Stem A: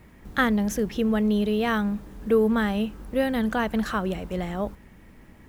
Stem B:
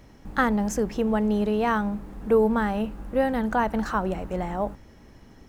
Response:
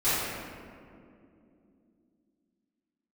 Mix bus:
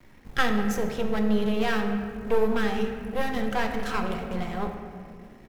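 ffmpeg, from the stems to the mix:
-filter_complex "[0:a]equalizer=f=2.5k:w=0.42:g=4.5,aeval=exprs='max(val(0),0)':c=same,volume=-3.5dB,asplit=2[a][b];[b]volume=-16dB[c];[1:a]volume=-1,adelay=3.5,volume=-10.5dB,asplit=2[d][e];[e]volume=-18.5dB[f];[2:a]atrim=start_sample=2205[g];[c][f]amix=inputs=2:normalize=0[h];[h][g]afir=irnorm=-1:irlink=0[i];[a][d][i]amix=inputs=3:normalize=0"

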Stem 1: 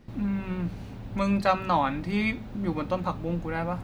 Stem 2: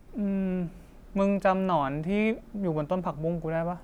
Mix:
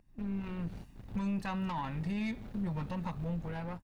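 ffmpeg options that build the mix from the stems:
-filter_complex "[0:a]acompressor=threshold=-35dB:ratio=6,aeval=exprs='(tanh(56.2*val(0)+0.75)-tanh(0.75))/56.2':c=same,volume=1.5dB[a];[1:a]equalizer=f=700:t=o:w=0.99:g=-11.5,dynaudnorm=f=240:g=5:m=12dB,aecho=1:1:1.1:0.85,adelay=1.1,volume=-19.5dB,asplit=2[b][c];[c]apad=whole_len=168966[d];[a][d]sidechaingate=range=-34dB:threshold=-50dB:ratio=16:detection=peak[e];[e][b]amix=inputs=2:normalize=0,alimiter=level_in=3.5dB:limit=-24dB:level=0:latency=1:release=17,volume=-3.5dB"

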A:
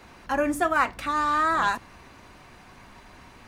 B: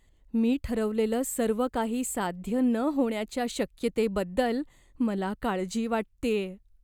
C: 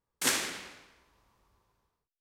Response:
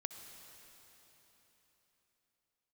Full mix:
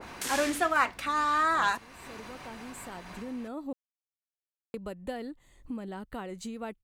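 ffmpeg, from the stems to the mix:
-filter_complex "[0:a]lowshelf=f=180:g=-6,volume=-3.5dB,asplit=2[a][b];[1:a]adelay=700,volume=-11dB,asplit=3[c][d][e];[c]atrim=end=3.73,asetpts=PTS-STARTPTS,afade=t=out:st=3.726:d=0.004:c=hsin[f];[d]atrim=start=3.73:end=4.74,asetpts=PTS-STARTPTS,volume=0[g];[e]atrim=start=4.74,asetpts=PTS-STARTPTS,afade=t=in:d=0.004:c=hsin[h];[f][g][h]concat=n=3:v=0:a=1[i];[2:a]alimiter=limit=-22dB:level=0:latency=1:release=127,volume=-2.5dB[j];[b]apad=whole_len=332291[k];[i][k]sidechaincompress=threshold=-46dB:ratio=8:attack=16:release=1250[l];[a][l][j]amix=inputs=3:normalize=0,acompressor=mode=upward:threshold=-34dB:ratio=2.5,adynamicequalizer=threshold=0.0126:dfrequency=1600:dqfactor=0.7:tfrequency=1600:tqfactor=0.7:attack=5:release=100:ratio=0.375:range=1.5:mode=boostabove:tftype=highshelf"

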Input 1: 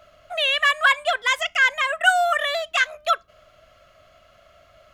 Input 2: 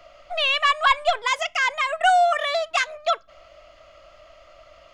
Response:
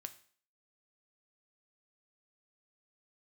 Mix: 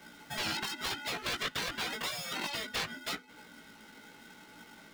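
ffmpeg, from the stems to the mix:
-filter_complex "[0:a]acompressor=threshold=-29dB:ratio=6,volume=-12dB[a];[1:a]bandreject=f=121.5:t=h:w=4,bandreject=f=243:t=h:w=4,bandreject=f=364.5:t=h:w=4,bandreject=f=486:t=h:w=4,bandreject=f=607.5:t=h:w=4,aeval=exprs='val(0)*sgn(sin(2*PI*860*n/s))':c=same,volume=-1,volume=-1.5dB[b];[a][b]amix=inputs=2:normalize=0,flanger=delay=16.5:depth=2.1:speed=0.89,acrossover=split=230|4700[c][d][e];[c]acompressor=threshold=-39dB:ratio=4[f];[d]acompressor=threshold=-25dB:ratio=4[g];[e]acompressor=threshold=-46dB:ratio=4[h];[f][g][h]amix=inputs=3:normalize=0,afftfilt=real='re*lt(hypot(re,im),0.0891)':imag='im*lt(hypot(re,im),0.0891)':win_size=1024:overlap=0.75"

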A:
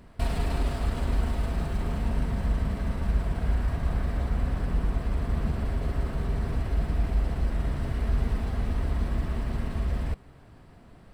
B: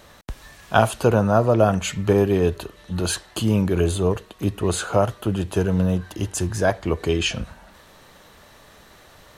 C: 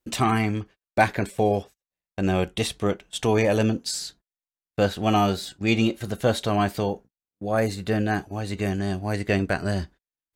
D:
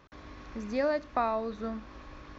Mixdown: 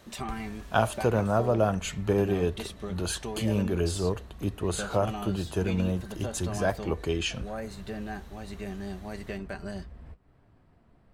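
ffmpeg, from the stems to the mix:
-filter_complex "[0:a]flanger=delay=9.8:depth=5:regen=-45:speed=0.77:shape=sinusoidal,volume=-5.5dB[a];[1:a]volume=-7.5dB[b];[2:a]aecho=1:1:5.1:0.53,acompressor=threshold=-21dB:ratio=6,volume=-11.5dB[c];[3:a]acrusher=bits=4:mix=0:aa=0.000001,volume=-9dB[d];[a][d]amix=inputs=2:normalize=0,highshelf=f=3.4k:g=-8,acompressor=threshold=-43dB:ratio=5,volume=0dB[e];[b][c][e]amix=inputs=3:normalize=0"

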